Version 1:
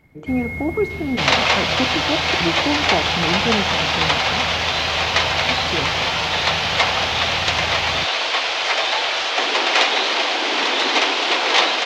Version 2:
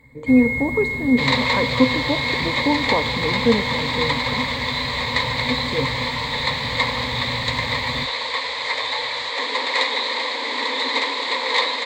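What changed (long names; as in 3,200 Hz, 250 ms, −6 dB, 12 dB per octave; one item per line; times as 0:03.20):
second sound −7.5 dB
master: add EQ curve with evenly spaced ripples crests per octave 1, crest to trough 16 dB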